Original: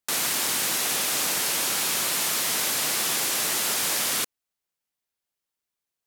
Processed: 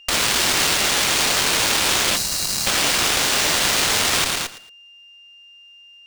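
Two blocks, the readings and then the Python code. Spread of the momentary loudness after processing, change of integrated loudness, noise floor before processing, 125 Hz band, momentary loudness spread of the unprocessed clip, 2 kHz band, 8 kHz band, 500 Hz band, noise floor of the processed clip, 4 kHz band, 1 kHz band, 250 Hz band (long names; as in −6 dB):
3 LU, +6.0 dB, below −85 dBFS, +12.0 dB, 1 LU, +9.0 dB, +4.0 dB, +8.5 dB, −47 dBFS, +8.5 dB, +8.5 dB, +8.5 dB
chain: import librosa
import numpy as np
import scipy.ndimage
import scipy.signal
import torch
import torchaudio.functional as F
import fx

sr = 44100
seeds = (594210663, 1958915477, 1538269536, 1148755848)

p1 = scipy.signal.sosfilt(scipy.signal.butter(4, 170.0, 'highpass', fs=sr, output='sos'), x)
p2 = fx.echo_feedback(p1, sr, ms=112, feedback_pct=31, wet_db=-8)
p3 = fx.dynamic_eq(p2, sr, hz=3400.0, q=0.95, threshold_db=-39.0, ratio=4.0, max_db=4)
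p4 = fx.over_compress(p3, sr, threshold_db=-38.0, ratio=-1.0)
p5 = p3 + F.gain(torch.from_numpy(p4), 1.5).numpy()
p6 = fx.sample_hold(p5, sr, seeds[0], rate_hz=13000.0, jitter_pct=0)
p7 = fx.spec_erase(p6, sr, start_s=2.16, length_s=0.5, low_hz=230.0, high_hz=3800.0)
p8 = p7 + 10.0 ** (-40.0 / 20.0) * np.sin(2.0 * np.pi * 2800.0 * np.arange(len(p7)) / sr)
p9 = fx.cheby_harmonics(p8, sr, harmonics=(4, 7), levels_db=(-15, -22), full_scale_db=-10.5)
y = F.gain(torch.from_numpy(p9), 3.0).numpy()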